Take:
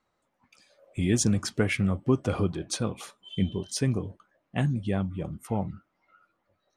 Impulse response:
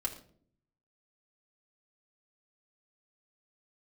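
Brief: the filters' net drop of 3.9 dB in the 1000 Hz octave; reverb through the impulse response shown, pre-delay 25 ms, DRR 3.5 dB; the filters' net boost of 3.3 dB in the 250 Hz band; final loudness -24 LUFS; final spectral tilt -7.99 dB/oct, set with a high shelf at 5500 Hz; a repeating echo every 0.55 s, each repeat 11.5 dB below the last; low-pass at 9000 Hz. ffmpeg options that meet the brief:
-filter_complex "[0:a]lowpass=9k,equalizer=f=250:t=o:g=4.5,equalizer=f=1k:t=o:g=-5.5,highshelf=f=5.5k:g=-9,aecho=1:1:550|1100|1650:0.266|0.0718|0.0194,asplit=2[a][b];[1:a]atrim=start_sample=2205,adelay=25[c];[b][c]afir=irnorm=-1:irlink=0,volume=-5.5dB[d];[a][d]amix=inputs=2:normalize=0,volume=1.5dB"

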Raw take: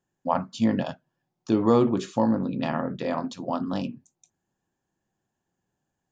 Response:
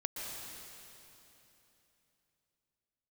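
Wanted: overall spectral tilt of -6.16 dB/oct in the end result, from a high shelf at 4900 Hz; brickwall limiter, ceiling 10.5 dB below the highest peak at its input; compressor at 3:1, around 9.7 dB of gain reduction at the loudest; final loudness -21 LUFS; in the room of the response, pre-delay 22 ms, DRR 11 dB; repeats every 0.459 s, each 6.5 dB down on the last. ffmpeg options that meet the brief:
-filter_complex "[0:a]highshelf=f=4.9k:g=-6,acompressor=threshold=-29dB:ratio=3,alimiter=level_in=2dB:limit=-24dB:level=0:latency=1,volume=-2dB,aecho=1:1:459|918|1377|1836|2295|2754:0.473|0.222|0.105|0.0491|0.0231|0.0109,asplit=2[a][b];[1:a]atrim=start_sample=2205,adelay=22[c];[b][c]afir=irnorm=-1:irlink=0,volume=-13dB[d];[a][d]amix=inputs=2:normalize=0,volume=15dB"

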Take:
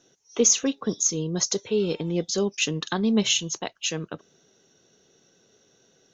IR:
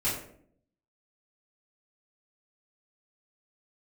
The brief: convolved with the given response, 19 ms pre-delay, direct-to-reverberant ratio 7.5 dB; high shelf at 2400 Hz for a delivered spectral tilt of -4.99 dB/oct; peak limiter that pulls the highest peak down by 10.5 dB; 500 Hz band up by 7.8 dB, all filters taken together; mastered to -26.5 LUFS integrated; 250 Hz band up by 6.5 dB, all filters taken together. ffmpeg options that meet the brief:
-filter_complex "[0:a]equalizer=f=250:t=o:g=6.5,equalizer=f=500:t=o:g=7.5,highshelf=f=2.4k:g=-8,alimiter=limit=-13.5dB:level=0:latency=1,asplit=2[a][b];[1:a]atrim=start_sample=2205,adelay=19[c];[b][c]afir=irnorm=-1:irlink=0,volume=-16dB[d];[a][d]amix=inputs=2:normalize=0,volume=-3dB"

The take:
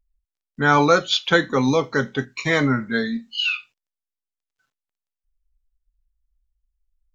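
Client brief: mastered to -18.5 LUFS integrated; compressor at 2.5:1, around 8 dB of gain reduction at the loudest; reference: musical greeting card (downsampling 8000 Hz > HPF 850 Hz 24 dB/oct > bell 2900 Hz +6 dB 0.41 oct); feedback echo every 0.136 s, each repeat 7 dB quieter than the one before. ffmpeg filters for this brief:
-af "acompressor=threshold=-23dB:ratio=2.5,aecho=1:1:136|272|408|544|680:0.447|0.201|0.0905|0.0407|0.0183,aresample=8000,aresample=44100,highpass=f=850:w=0.5412,highpass=f=850:w=1.3066,equalizer=f=2.9k:t=o:w=0.41:g=6,volume=7dB"

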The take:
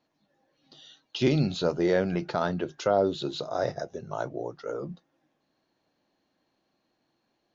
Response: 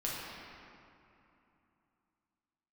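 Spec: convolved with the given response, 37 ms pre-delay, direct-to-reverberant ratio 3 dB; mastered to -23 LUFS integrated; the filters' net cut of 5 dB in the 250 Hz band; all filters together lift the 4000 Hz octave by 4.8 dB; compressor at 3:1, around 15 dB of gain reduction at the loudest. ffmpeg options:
-filter_complex "[0:a]equalizer=f=250:t=o:g=-8,equalizer=f=4k:t=o:g=5.5,acompressor=threshold=-42dB:ratio=3,asplit=2[a][b];[1:a]atrim=start_sample=2205,adelay=37[c];[b][c]afir=irnorm=-1:irlink=0,volume=-7.5dB[d];[a][d]amix=inputs=2:normalize=0,volume=18dB"

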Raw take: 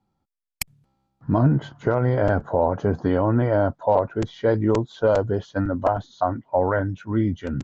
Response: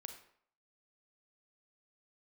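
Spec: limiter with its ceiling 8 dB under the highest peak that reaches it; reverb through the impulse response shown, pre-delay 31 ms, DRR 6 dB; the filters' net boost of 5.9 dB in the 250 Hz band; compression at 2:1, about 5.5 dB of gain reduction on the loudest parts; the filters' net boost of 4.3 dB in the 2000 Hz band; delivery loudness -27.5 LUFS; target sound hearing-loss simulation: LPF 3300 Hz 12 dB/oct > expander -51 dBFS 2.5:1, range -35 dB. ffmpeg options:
-filter_complex "[0:a]equalizer=f=250:t=o:g=7.5,equalizer=f=2k:t=o:g=6.5,acompressor=threshold=-20dB:ratio=2,alimiter=limit=-14dB:level=0:latency=1,asplit=2[a][b];[1:a]atrim=start_sample=2205,adelay=31[c];[b][c]afir=irnorm=-1:irlink=0,volume=-1.5dB[d];[a][d]amix=inputs=2:normalize=0,lowpass=3.3k,agate=range=-35dB:threshold=-51dB:ratio=2.5,volume=-3dB"

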